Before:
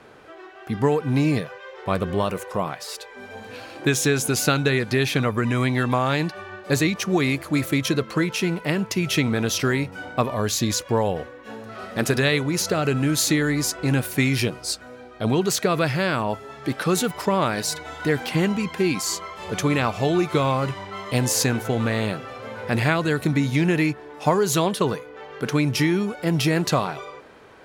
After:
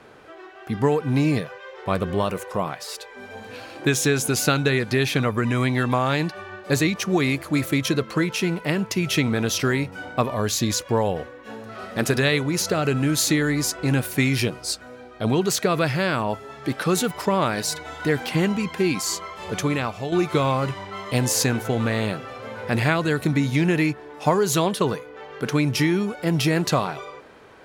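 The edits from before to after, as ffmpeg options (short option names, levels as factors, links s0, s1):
-filter_complex "[0:a]asplit=2[s0][s1];[s0]atrim=end=20.12,asetpts=PTS-STARTPTS,afade=t=out:st=19.5:d=0.62:silence=0.354813[s2];[s1]atrim=start=20.12,asetpts=PTS-STARTPTS,afade=t=in:d=0.004:c=hsin:silence=0.354813[s3];[s2][s3]concat=n=2:v=0:a=1"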